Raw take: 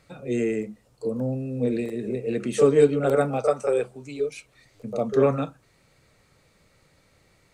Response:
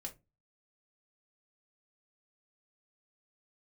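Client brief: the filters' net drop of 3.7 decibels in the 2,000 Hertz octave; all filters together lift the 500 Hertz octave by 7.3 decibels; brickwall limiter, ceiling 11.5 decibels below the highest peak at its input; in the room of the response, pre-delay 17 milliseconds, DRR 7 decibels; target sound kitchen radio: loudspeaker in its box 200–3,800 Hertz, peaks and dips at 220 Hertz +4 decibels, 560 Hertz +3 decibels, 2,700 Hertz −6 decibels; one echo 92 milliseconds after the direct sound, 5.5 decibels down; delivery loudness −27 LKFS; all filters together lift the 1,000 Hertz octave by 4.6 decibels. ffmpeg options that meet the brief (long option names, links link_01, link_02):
-filter_complex "[0:a]equalizer=frequency=500:width_type=o:gain=6.5,equalizer=frequency=1000:width_type=o:gain=5,equalizer=frequency=2000:width_type=o:gain=-6.5,alimiter=limit=-12.5dB:level=0:latency=1,aecho=1:1:92:0.531,asplit=2[link_01][link_02];[1:a]atrim=start_sample=2205,adelay=17[link_03];[link_02][link_03]afir=irnorm=-1:irlink=0,volume=-3.5dB[link_04];[link_01][link_04]amix=inputs=2:normalize=0,highpass=200,equalizer=frequency=220:width_type=q:width=4:gain=4,equalizer=frequency=560:width_type=q:width=4:gain=3,equalizer=frequency=2700:width_type=q:width=4:gain=-6,lowpass=frequency=3800:width=0.5412,lowpass=frequency=3800:width=1.3066,volume=-6.5dB"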